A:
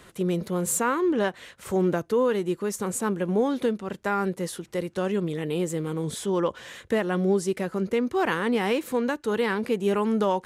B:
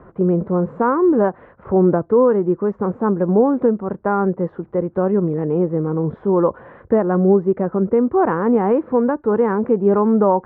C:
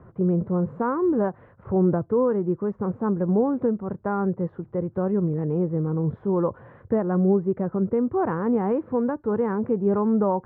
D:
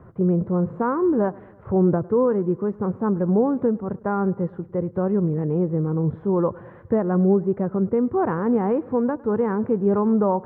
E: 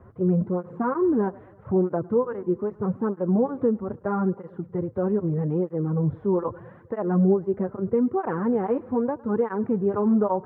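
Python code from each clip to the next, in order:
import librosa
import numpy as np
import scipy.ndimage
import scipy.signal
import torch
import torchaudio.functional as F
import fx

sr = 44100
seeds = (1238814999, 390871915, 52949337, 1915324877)

y1 = scipy.signal.sosfilt(scipy.signal.butter(4, 1200.0, 'lowpass', fs=sr, output='sos'), x)
y1 = y1 * 10.0 ** (9.0 / 20.0)
y2 = fx.peak_eq(y1, sr, hz=110.0, db=13.0, octaves=1.1)
y2 = y2 * 10.0 ** (-8.5 / 20.0)
y3 = fx.echo_feedback(y2, sr, ms=105, feedback_pct=59, wet_db=-23)
y3 = y3 * 10.0 ** (2.0 / 20.0)
y4 = fx.flanger_cancel(y3, sr, hz=0.79, depth_ms=7.0)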